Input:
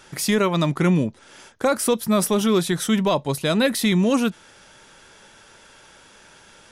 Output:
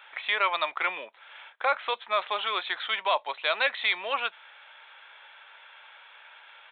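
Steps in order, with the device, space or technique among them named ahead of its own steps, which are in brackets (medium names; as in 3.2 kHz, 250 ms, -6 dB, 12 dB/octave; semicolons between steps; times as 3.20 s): musical greeting card (resampled via 8 kHz; high-pass 730 Hz 24 dB/octave; peaking EQ 2.3 kHz +5 dB 0.25 oct)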